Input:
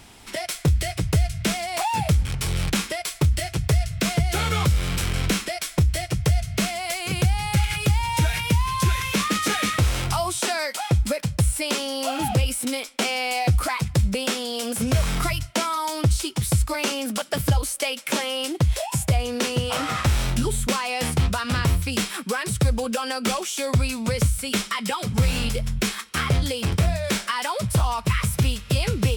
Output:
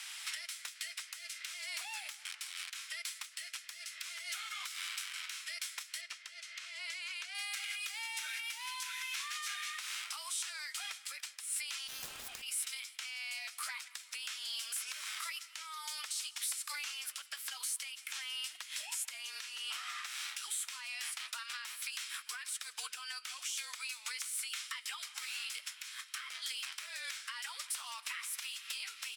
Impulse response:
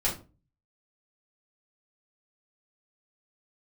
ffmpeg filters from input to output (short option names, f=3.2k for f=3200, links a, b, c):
-filter_complex "[0:a]highpass=f=1.4k:w=0.5412,highpass=f=1.4k:w=1.3066,aemphasis=mode=reproduction:type=75fm,acompressor=threshold=-47dB:ratio=10,crystalizer=i=4.5:c=0,alimiter=level_in=5dB:limit=-24dB:level=0:latency=1:release=263,volume=-5dB,afreqshift=-36,asettb=1/sr,asplit=3[a][b][c];[a]atrim=end=6.014[d];[b]atrim=start=6.01:end=7.35,asetpts=PTS-STARTPTS,afade=t=in:d=0.004:c=qsin,afade=t=out:st=1.336:d=0.004:c=qsin,adynamicsmooth=sensitivity=5.5:basefreq=6.4k[e];[c]atrim=start=7.346[f];[d][e]acrossfade=d=0.004:c1=hsin:c2=qsin[g];[g][f]acrossfade=d=0.004:c1=qsin:c2=hsin,asplit=3[h][i][j];[h]afade=t=out:st=11.87:d=0.02[k];[i]aeval=exprs='0.0398*(cos(1*acos(clip(val(0)/0.0398,-1,1)))-cos(1*PI/2))+0.00891*(cos(3*acos(clip(val(0)/0.0398,-1,1)))-cos(3*PI/2))+0.00708*(cos(7*acos(clip(val(0)/0.0398,-1,1)))-cos(7*PI/2))':c=same,afade=t=in:st=11.87:d=0.02,afade=t=out:st=12.41:d=0.02[l];[j]afade=t=in:st=12.41:d=0.02[m];[k][l][m]amix=inputs=3:normalize=0,aecho=1:1:161|322|483|644:0.0944|0.0538|0.0307|0.0175,volume=2dB"